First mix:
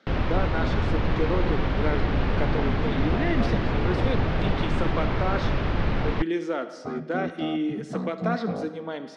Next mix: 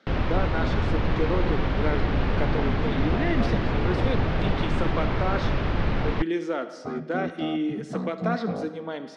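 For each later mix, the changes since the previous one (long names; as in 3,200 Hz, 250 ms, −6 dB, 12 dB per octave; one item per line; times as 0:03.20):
nothing changed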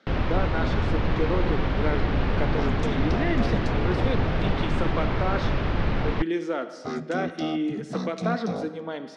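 second sound: remove moving average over 15 samples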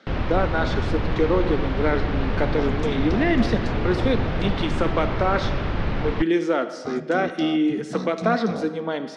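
speech +6.5 dB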